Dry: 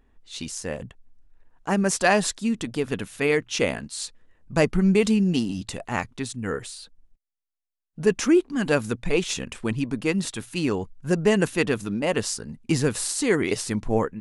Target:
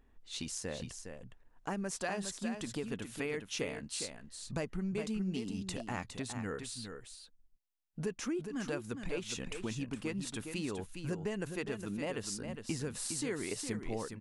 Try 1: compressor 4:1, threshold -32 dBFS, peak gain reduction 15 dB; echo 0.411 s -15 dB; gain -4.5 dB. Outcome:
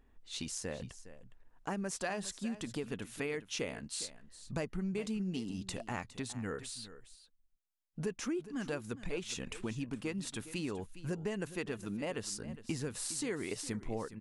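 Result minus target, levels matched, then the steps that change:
echo-to-direct -7.5 dB
change: echo 0.411 s -7.5 dB

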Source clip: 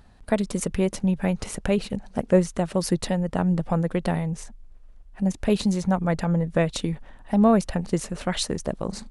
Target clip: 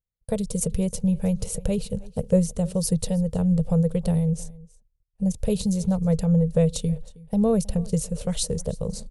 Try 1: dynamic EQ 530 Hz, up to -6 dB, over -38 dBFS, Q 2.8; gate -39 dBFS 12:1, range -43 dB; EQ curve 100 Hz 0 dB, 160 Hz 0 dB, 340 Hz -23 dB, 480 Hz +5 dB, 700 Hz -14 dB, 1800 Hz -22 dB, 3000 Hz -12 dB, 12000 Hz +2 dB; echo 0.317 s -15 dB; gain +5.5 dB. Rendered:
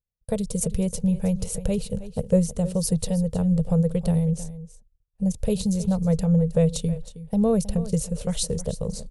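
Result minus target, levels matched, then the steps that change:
echo-to-direct +7 dB
change: echo 0.317 s -22 dB

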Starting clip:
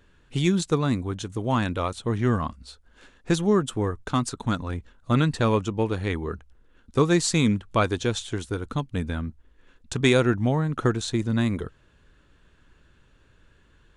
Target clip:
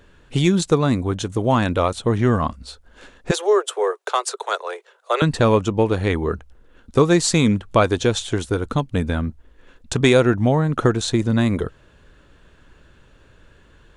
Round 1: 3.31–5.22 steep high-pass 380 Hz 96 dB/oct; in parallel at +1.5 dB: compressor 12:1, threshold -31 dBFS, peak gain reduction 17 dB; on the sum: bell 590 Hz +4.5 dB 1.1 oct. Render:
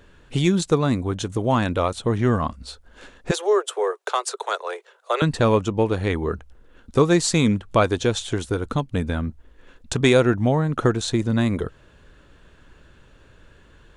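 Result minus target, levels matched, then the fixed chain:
compressor: peak gain reduction +7.5 dB
3.31–5.22 steep high-pass 380 Hz 96 dB/oct; in parallel at +1.5 dB: compressor 12:1, threshold -23 dBFS, peak gain reduction 9.5 dB; on the sum: bell 590 Hz +4.5 dB 1.1 oct

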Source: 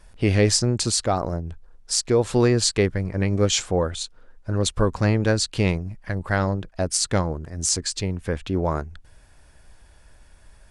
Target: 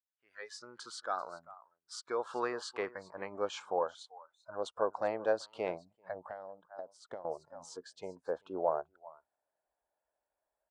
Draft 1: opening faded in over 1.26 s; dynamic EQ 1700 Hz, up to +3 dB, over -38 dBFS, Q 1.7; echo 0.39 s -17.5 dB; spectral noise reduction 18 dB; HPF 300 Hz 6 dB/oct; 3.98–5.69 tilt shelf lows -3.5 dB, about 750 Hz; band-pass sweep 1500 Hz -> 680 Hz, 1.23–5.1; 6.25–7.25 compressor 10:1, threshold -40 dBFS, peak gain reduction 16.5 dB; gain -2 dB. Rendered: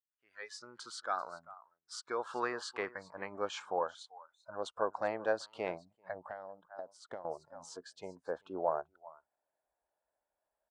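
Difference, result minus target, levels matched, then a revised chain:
2000 Hz band +3.5 dB
opening faded in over 1.26 s; dynamic EQ 480 Hz, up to +3 dB, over -38 dBFS, Q 1.7; echo 0.39 s -17.5 dB; spectral noise reduction 18 dB; HPF 300 Hz 6 dB/oct; 3.98–5.69 tilt shelf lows -3.5 dB, about 750 Hz; band-pass sweep 1500 Hz -> 680 Hz, 1.23–5.1; 6.25–7.25 compressor 10:1, threshold -40 dBFS, peak gain reduction 18 dB; gain -2 dB

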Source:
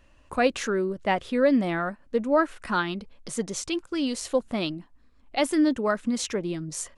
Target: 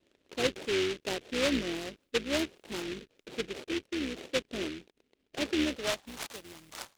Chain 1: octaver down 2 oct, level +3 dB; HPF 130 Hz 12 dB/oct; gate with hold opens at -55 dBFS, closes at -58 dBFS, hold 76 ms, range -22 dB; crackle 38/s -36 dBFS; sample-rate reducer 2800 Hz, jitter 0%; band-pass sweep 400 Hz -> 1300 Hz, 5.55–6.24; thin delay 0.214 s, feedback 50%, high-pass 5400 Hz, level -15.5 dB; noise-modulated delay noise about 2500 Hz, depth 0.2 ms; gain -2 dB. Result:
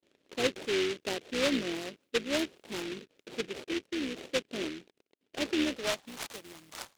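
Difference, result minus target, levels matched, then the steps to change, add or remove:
125 Hz band -2.5 dB
remove: HPF 130 Hz 12 dB/oct

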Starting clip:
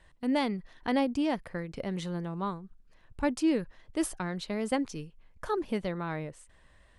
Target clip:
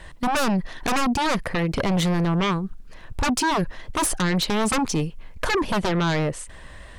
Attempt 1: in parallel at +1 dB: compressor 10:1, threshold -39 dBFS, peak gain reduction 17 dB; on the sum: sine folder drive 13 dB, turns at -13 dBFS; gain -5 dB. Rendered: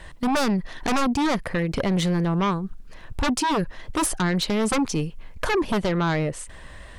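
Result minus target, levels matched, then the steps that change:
compressor: peak gain reduction +9 dB
change: compressor 10:1, threshold -29 dBFS, peak gain reduction 8 dB

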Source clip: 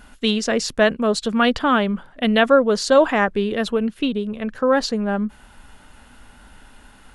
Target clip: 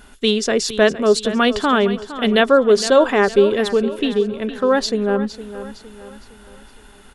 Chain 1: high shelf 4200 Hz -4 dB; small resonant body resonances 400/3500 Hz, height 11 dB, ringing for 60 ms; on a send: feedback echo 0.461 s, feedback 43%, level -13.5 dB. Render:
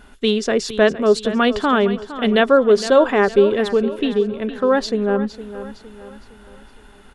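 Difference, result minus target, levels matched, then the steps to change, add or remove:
8000 Hz band -6.0 dB
change: high shelf 4200 Hz +4.5 dB

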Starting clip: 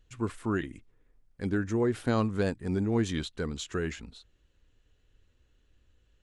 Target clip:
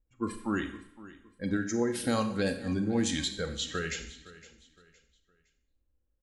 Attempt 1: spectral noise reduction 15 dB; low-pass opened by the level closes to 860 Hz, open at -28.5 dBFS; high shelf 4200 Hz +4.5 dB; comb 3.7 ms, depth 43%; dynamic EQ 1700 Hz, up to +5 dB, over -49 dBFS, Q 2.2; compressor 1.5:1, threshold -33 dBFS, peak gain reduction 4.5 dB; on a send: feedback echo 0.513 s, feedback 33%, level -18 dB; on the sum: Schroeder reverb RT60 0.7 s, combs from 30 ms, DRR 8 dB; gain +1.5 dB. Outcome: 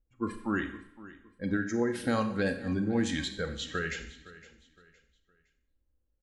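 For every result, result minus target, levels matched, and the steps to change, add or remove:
8000 Hz band -7.0 dB; 2000 Hz band +2.5 dB
change: high shelf 4200 Hz +14.5 dB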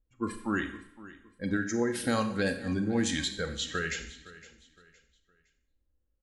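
2000 Hz band +3.5 dB
remove: dynamic EQ 1700 Hz, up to +5 dB, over -49 dBFS, Q 2.2

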